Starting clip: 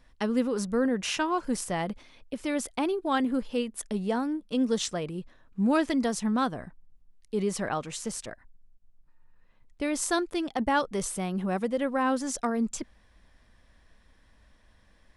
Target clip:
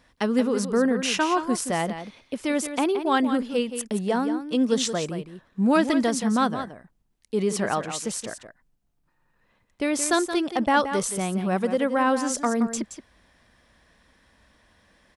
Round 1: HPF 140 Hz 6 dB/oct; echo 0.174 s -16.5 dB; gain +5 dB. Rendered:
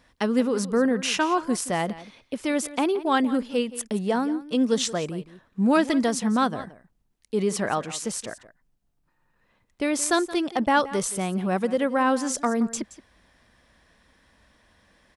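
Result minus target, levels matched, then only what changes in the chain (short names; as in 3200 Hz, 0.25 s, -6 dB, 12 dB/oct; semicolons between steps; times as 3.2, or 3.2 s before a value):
echo-to-direct -6.5 dB
change: echo 0.174 s -10 dB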